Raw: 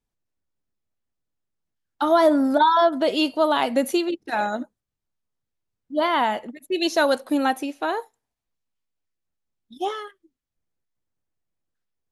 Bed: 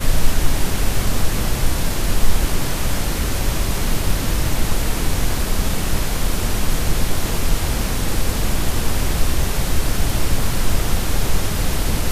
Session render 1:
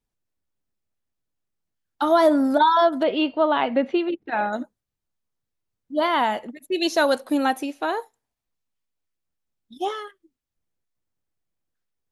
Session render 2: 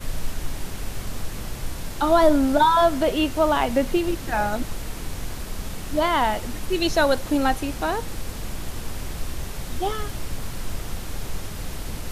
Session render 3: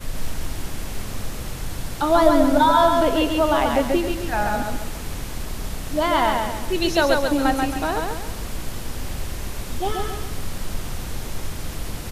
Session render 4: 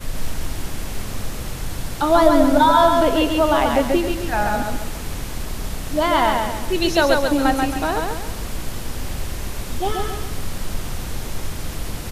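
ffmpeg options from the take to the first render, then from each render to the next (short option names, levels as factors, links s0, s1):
-filter_complex "[0:a]asettb=1/sr,asplit=3[s0][s1][s2];[s0]atrim=end=3.034[s3];[s1]atrim=start=3.03:end=4.53,asetpts=PTS-STARTPTS,afade=t=in:d=0.004:c=qsin,afade=t=out:st=1.496:d=0.004:c=qsin,lowpass=f=3100:w=0.5412,lowpass=f=3100:w=1.3066[s4];[s2]atrim=start=4.526[s5];[s3][s4]acrossfade=d=0.004:c1=hsin:c2=qsin[s6];[s6][s5]acrossfade=d=0.004:c1=qsin:c2=hsin"
-filter_complex "[1:a]volume=0.251[s0];[0:a][s0]amix=inputs=2:normalize=0"
-af "aecho=1:1:136|272|408|544|680:0.668|0.267|0.107|0.0428|0.0171"
-af "volume=1.26,alimiter=limit=0.794:level=0:latency=1"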